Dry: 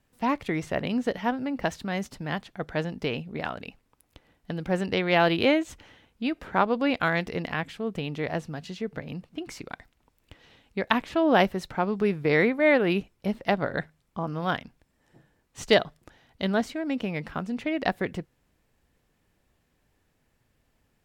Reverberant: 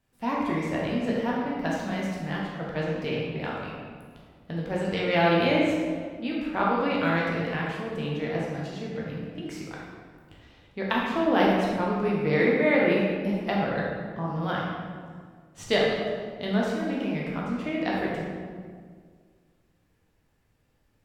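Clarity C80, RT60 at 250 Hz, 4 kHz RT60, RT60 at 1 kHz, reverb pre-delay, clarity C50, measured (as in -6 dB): 1.5 dB, 2.2 s, 1.1 s, 1.7 s, 9 ms, -1.0 dB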